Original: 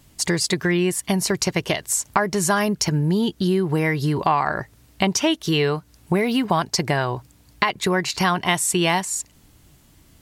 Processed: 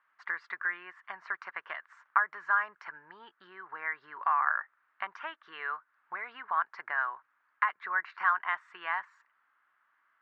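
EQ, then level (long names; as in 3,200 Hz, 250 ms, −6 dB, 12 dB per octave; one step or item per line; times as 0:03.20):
flat-topped band-pass 1,400 Hz, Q 2.2
high-frequency loss of the air 140 metres
0.0 dB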